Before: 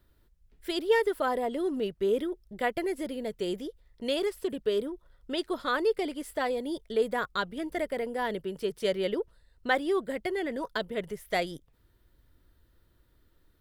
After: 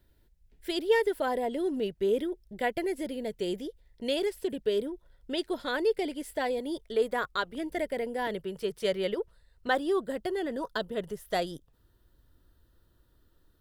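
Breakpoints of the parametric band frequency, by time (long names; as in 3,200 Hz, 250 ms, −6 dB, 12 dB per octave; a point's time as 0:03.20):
parametric band −13.5 dB 0.24 octaves
1,200 Hz
from 0:06.59 190 Hz
from 0:07.55 1,200 Hz
from 0:08.27 280 Hz
from 0:09.67 2,200 Hz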